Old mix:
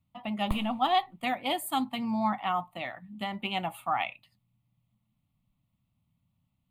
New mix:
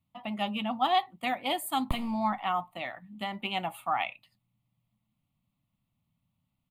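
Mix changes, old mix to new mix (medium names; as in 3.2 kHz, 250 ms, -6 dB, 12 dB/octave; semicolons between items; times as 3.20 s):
speech: add bass shelf 140 Hz -7 dB; background: entry +1.40 s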